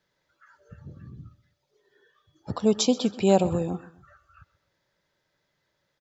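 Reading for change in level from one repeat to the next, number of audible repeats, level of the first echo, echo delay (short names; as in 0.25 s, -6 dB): -8.0 dB, 2, -19.0 dB, 0.128 s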